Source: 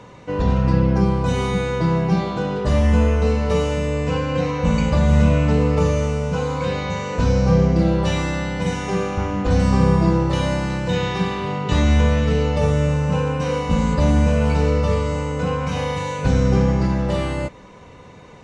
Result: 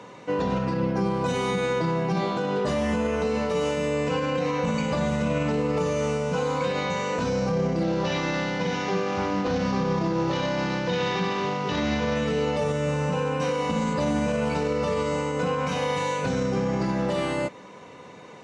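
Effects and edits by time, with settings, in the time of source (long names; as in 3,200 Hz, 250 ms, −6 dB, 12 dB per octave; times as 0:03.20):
0:07.83–0:12.16: variable-slope delta modulation 32 kbit/s
whole clip: high-pass filter 200 Hz 12 dB per octave; brickwall limiter −17 dBFS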